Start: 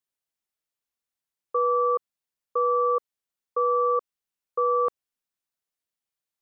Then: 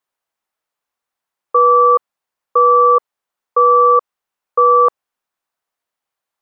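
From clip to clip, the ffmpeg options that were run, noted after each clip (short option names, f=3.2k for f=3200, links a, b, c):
-af "equalizer=f=950:w=0.54:g=12.5,volume=2.5dB"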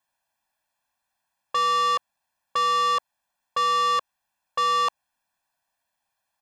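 -af "aecho=1:1:1.2:0.99,asoftclip=type=tanh:threshold=-20.5dB"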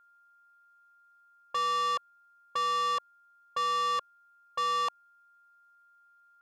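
-af "aeval=exprs='val(0)+0.00224*sin(2*PI*1400*n/s)':c=same,volume=-7dB"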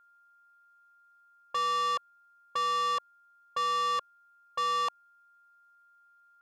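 -af anull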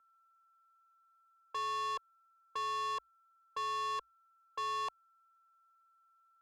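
-af "afreqshift=-59,volume=-7.5dB"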